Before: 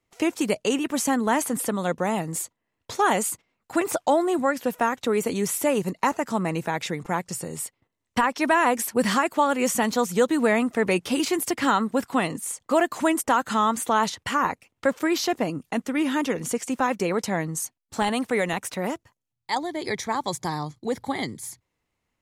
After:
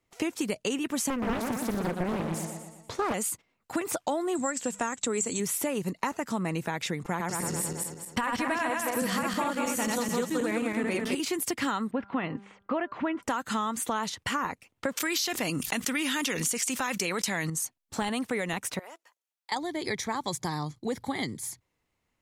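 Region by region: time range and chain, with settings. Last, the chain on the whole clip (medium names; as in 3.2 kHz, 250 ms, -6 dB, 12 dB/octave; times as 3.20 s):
1.10–3.14 s: treble shelf 4 kHz -9.5 dB + feedback delay 119 ms, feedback 50%, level -6 dB + loudspeaker Doppler distortion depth 0.72 ms
4.35–5.40 s: resonant low-pass 7.6 kHz, resonance Q 11 + hum notches 50/100/150/200 Hz
7.09–11.15 s: backward echo that repeats 107 ms, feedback 62%, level -1 dB + de-esser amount 35%
11.91–13.23 s: low-pass 2.8 kHz 24 dB/octave + de-hum 198.6 Hz, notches 8
14.97–17.50 s: tilt shelf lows -7.5 dB, about 1.4 kHz + level flattener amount 70%
18.79–19.52 s: Bessel high-pass 640 Hz, order 4 + compression 16:1, threshold -40 dBFS
whole clip: dynamic bell 660 Hz, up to -4 dB, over -35 dBFS, Q 0.76; compression, threshold -26 dBFS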